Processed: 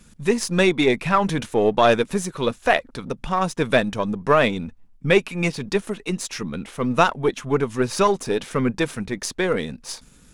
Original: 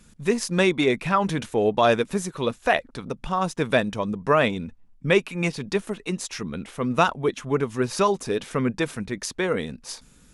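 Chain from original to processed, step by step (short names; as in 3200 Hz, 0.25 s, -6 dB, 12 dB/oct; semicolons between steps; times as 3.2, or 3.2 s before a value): half-wave gain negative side -3 dB; gain +4 dB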